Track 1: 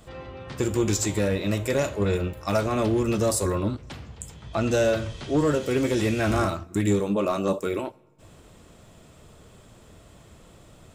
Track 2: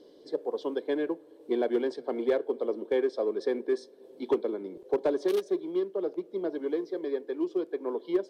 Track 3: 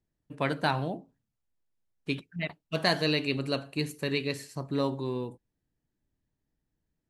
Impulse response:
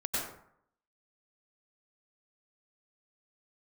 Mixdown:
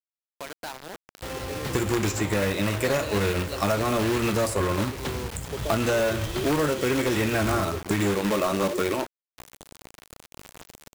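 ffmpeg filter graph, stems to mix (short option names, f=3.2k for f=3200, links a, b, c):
-filter_complex "[0:a]acrusher=bits=2:mode=log:mix=0:aa=0.000001,adelay=1150,volume=1.5dB[a];[1:a]lowpass=4k,adelay=600,volume=-7dB[b];[2:a]asoftclip=type=tanh:threshold=-21dB,acompressor=threshold=-37dB:ratio=3,highpass=360,volume=1dB,asplit=2[c][d];[d]apad=whole_len=392254[e];[b][e]sidechaincompress=threshold=-49dB:ratio=3:attack=21:release=1490[f];[a][f][c]amix=inputs=3:normalize=0,dynaudnorm=f=430:g=7:m=7dB,acrusher=bits=5:mix=0:aa=0.000001,acrossover=split=930|2400[g][h][i];[g]acompressor=threshold=-24dB:ratio=4[j];[h]acompressor=threshold=-30dB:ratio=4[k];[i]acompressor=threshold=-35dB:ratio=4[l];[j][k][l]amix=inputs=3:normalize=0"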